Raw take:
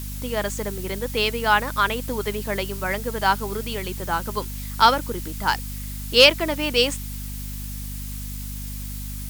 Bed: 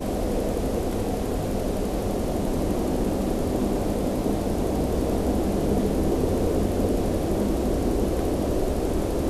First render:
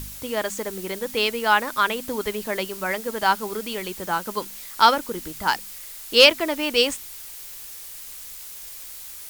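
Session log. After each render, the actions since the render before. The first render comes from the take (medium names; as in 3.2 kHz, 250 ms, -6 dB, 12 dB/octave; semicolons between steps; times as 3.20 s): de-hum 50 Hz, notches 5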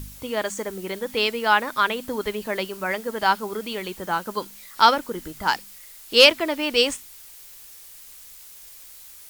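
noise print and reduce 6 dB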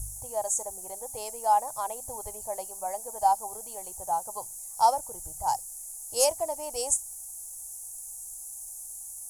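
FFT filter 130 Hz 0 dB, 190 Hz -25 dB, 290 Hz -22 dB, 420 Hz -18 dB, 780 Hz +4 dB, 1.4 kHz -27 dB, 3.8 kHz -27 dB, 6.7 kHz +7 dB, 11 kHz +11 dB, 15 kHz -14 dB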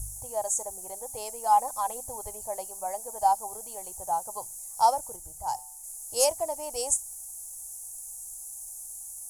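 1.46–2.02 s: comb 3.9 ms, depth 61%; 5.16–5.84 s: feedback comb 68 Hz, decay 0.67 s, harmonics odd, mix 40%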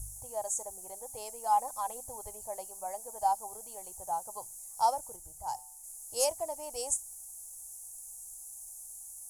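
trim -5.5 dB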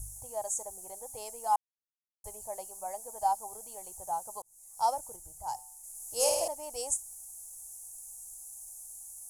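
1.56–2.24 s: mute; 4.42–4.92 s: fade in; 5.90–6.48 s: flutter echo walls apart 8.8 m, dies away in 1.1 s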